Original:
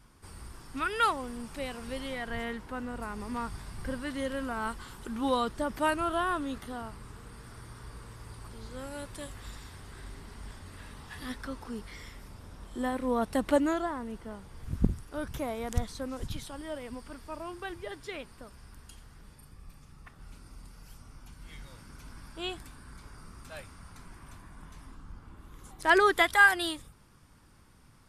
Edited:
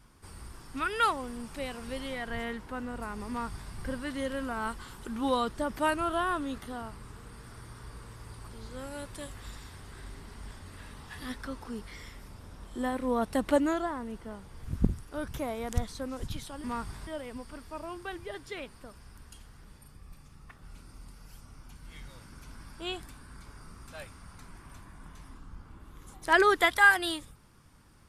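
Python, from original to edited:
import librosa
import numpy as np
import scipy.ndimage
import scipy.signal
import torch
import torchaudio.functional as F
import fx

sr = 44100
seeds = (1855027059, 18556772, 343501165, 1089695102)

y = fx.edit(x, sr, fx.duplicate(start_s=3.29, length_s=0.43, to_s=16.64), tone=tone)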